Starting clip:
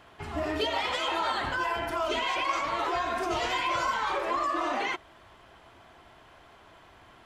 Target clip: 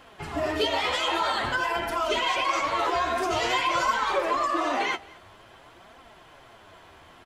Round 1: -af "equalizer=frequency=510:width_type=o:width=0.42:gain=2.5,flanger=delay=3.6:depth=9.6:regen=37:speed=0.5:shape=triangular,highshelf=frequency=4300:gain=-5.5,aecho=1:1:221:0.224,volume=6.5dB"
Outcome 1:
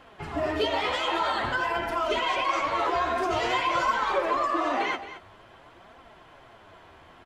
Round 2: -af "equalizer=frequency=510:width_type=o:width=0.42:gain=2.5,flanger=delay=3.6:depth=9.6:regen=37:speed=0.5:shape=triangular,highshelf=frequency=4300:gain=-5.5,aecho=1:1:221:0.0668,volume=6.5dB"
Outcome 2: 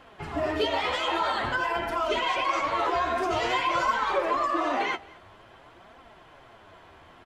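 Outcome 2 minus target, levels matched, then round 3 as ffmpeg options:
8,000 Hz band −6.0 dB
-af "equalizer=frequency=510:width_type=o:width=0.42:gain=2.5,flanger=delay=3.6:depth=9.6:regen=37:speed=0.5:shape=triangular,highshelf=frequency=4300:gain=4,aecho=1:1:221:0.0668,volume=6.5dB"

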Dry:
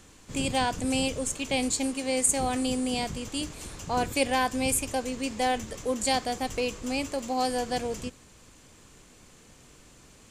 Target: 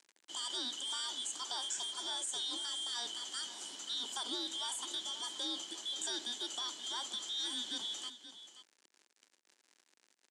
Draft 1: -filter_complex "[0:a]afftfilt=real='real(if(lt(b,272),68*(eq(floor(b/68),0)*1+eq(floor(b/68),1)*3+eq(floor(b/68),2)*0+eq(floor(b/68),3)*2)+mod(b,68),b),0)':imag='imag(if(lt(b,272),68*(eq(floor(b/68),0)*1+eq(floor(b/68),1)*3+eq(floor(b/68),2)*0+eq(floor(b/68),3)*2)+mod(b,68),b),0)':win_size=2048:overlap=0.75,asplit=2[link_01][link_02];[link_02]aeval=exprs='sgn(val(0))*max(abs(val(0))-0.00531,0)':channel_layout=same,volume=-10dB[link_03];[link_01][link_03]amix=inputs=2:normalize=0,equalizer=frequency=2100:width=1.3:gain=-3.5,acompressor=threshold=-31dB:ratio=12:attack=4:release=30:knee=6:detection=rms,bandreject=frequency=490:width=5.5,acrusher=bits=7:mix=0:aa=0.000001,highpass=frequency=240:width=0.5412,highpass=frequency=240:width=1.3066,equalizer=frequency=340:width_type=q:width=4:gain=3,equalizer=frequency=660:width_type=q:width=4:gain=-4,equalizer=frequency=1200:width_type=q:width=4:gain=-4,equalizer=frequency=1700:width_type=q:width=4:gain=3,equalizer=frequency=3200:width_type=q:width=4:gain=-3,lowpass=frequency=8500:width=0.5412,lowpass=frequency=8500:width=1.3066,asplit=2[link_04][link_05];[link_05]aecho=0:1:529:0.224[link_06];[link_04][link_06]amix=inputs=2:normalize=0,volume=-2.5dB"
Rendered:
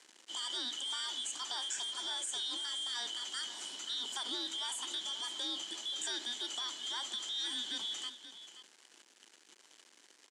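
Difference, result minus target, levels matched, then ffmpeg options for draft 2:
2,000 Hz band +3.0 dB
-filter_complex "[0:a]afftfilt=real='real(if(lt(b,272),68*(eq(floor(b/68),0)*1+eq(floor(b/68),1)*3+eq(floor(b/68),2)*0+eq(floor(b/68),3)*2)+mod(b,68),b),0)':imag='imag(if(lt(b,272),68*(eq(floor(b/68),0)*1+eq(floor(b/68),1)*3+eq(floor(b/68),2)*0+eq(floor(b/68),3)*2)+mod(b,68),b),0)':win_size=2048:overlap=0.75,asplit=2[link_01][link_02];[link_02]aeval=exprs='sgn(val(0))*max(abs(val(0))-0.00531,0)':channel_layout=same,volume=-10dB[link_03];[link_01][link_03]amix=inputs=2:normalize=0,equalizer=frequency=2100:width=1.3:gain=-13,acompressor=threshold=-31dB:ratio=12:attack=4:release=30:knee=6:detection=rms,bandreject=frequency=490:width=5.5,acrusher=bits=7:mix=0:aa=0.000001,highpass=frequency=240:width=0.5412,highpass=frequency=240:width=1.3066,equalizer=frequency=340:width_type=q:width=4:gain=3,equalizer=frequency=660:width_type=q:width=4:gain=-4,equalizer=frequency=1200:width_type=q:width=4:gain=-4,equalizer=frequency=1700:width_type=q:width=4:gain=3,equalizer=frequency=3200:width_type=q:width=4:gain=-3,lowpass=frequency=8500:width=0.5412,lowpass=frequency=8500:width=1.3066,asplit=2[link_04][link_05];[link_05]aecho=0:1:529:0.224[link_06];[link_04][link_06]amix=inputs=2:normalize=0,volume=-2.5dB"

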